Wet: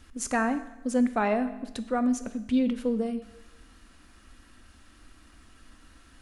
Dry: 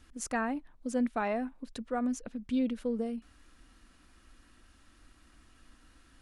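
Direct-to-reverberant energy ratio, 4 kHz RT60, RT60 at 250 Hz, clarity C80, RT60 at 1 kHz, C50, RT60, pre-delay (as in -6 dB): 10.0 dB, 0.95 s, 1.0 s, 15.0 dB, 1.0 s, 13.0 dB, 1.0 s, 5 ms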